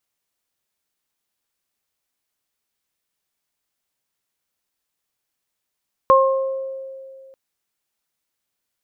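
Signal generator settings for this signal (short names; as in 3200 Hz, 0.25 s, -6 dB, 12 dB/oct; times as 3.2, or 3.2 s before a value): additive tone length 1.24 s, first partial 534 Hz, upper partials 3 dB, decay 2.34 s, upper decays 0.76 s, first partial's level -11.5 dB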